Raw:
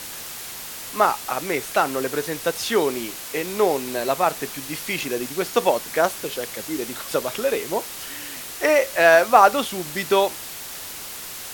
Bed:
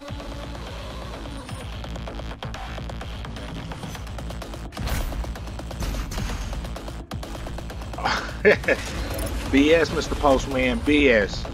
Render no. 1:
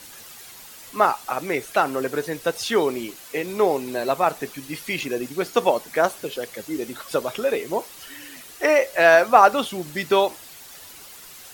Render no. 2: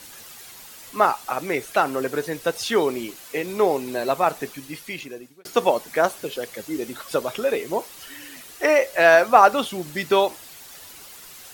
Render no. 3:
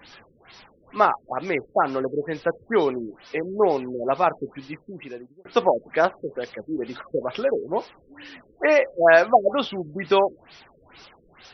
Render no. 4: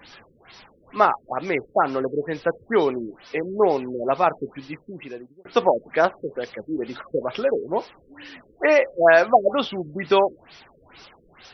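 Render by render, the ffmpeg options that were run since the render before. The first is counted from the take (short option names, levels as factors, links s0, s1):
-af "afftdn=nr=10:nf=-35"
-filter_complex "[0:a]asplit=2[s0][s1];[s0]atrim=end=5.45,asetpts=PTS-STARTPTS,afade=t=out:st=4.43:d=1.02[s2];[s1]atrim=start=5.45,asetpts=PTS-STARTPTS,afade=t=in:d=0.004:c=hsin[s3];[s2][s3]concat=n=2:v=0:a=1"
-af "afftfilt=real='re*lt(b*sr/1024,530*pow(6100/530,0.5+0.5*sin(2*PI*2.2*pts/sr)))':imag='im*lt(b*sr/1024,530*pow(6100/530,0.5+0.5*sin(2*PI*2.2*pts/sr)))':win_size=1024:overlap=0.75"
-af "volume=1.12,alimiter=limit=0.708:level=0:latency=1"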